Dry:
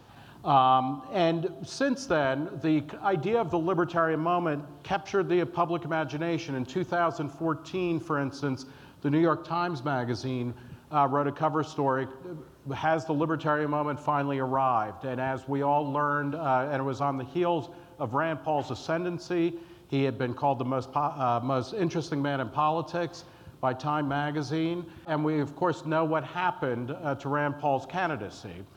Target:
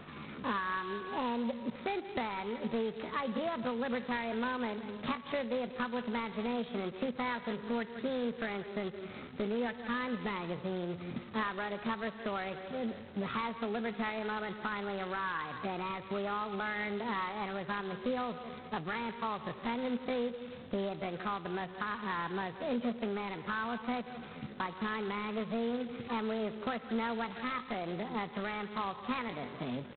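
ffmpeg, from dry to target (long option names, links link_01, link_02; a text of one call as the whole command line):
ffmpeg -i in.wav -filter_complex "[0:a]asplit=2[link_01][link_02];[link_02]aecho=0:1:165:0.126[link_03];[link_01][link_03]amix=inputs=2:normalize=0,asetrate=42336,aresample=44100,acompressor=threshold=-37dB:ratio=6,equalizer=frequency=160:width_type=o:width=0.29:gain=8.5,asoftclip=type=hard:threshold=-29.5dB,acrossover=split=2800[link_04][link_05];[link_05]acompressor=threshold=-60dB:ratio=4:attack=1:release=60[link_06];[link_04][link_06]amix=inputs=2:normalize=0,aeval=exprs='val(0)+0.000224*(sin(2*PI*60*n/s)+sin(2*PI*2*60*n/s)/2+sin(2*PI*3*60*n/s)/3+sin(2*PI*4*60*n/s)/4+sin(2*PI*5*60*n/s)/5)':channel_layout=same,asetrate=66075,aresample=44100,atempo=0.66742,volume=3dB" -ar 8000 -c:a adpcm_g726 -b:a 16k out.wav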